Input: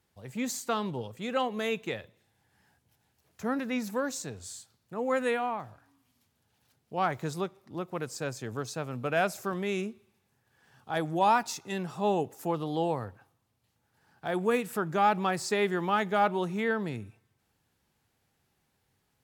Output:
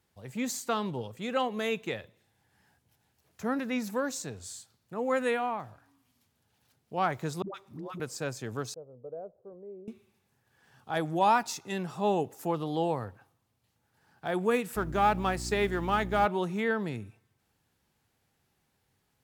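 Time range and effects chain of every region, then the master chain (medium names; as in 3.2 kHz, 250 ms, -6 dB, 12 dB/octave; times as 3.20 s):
7.42–8.00 s: peaking EQ 1 kHz +5 dB 0.23 oct + phase dispersion highs, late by 121 ms, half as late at 460 Hz + compression, threshold -36 dBFS
8.74–9.88 s: four-pole ladder low-pass 530 Hz, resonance 70% + peaking EQ 240 Hz -11 dB 2.2 oct
14.75–16.25 s: companding laws mixed up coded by A + mains buzz 60 Hz, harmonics 6, -39 dBFS -5 dB/octave
whole clip: none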